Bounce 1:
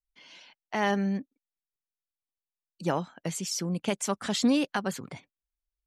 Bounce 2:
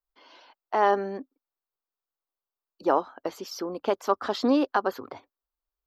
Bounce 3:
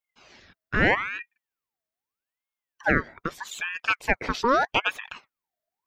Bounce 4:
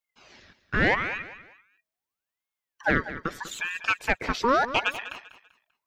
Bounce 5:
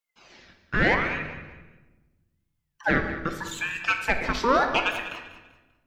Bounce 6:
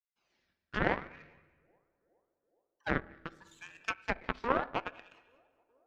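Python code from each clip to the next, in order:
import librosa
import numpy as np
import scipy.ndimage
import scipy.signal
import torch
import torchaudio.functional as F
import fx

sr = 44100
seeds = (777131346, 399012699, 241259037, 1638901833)

y1 = fx.curve_eq(x, sr, hz=(100.0, 160.0, 260.0, 390.0, 570.0, 1200.0, 2200.0, 4900.0, 9300.0, 13000.0), db=(0, -18, 4, 10, 9, 12, -4, 1, -24, 5))
y1 = y1 * 10.0 ** (-3.0 / 20.0)
y2 = fx.ring_lfo(y1, sr, carrier_hz=1400.0, swing_pct=55, hz=0.8)
y2 = y2 * 10.0 ** (3.5 / 20.0)
y3 = 10.0 ** (-9.5 / 20.0) * np.tanh(y2 / 10.0 ** (-9.5 / 20.0))
y3 = fx.echo_feedback(y3, sr, ms=195, feedback_pct=32, wet_db=-13.5)
y4 = fx.room_shoebox(y3, sr, seeds[0], volume_m3=700.0, walls='mixed', distance_m=0.8)
y5 = fx.echo_banded(y4, sr, ms=417, feedback_pct=76, hz=500.0, wet_db=-17.0)
y5 = fx.cheby_harmonics(y5, sr, harmonics=(3,), levels_db=(-10,), full_scale_db=-8.0)
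y5 = fx.env_lowpass_down(y5, sr, base_hz=1600.0, full_db=-31.0)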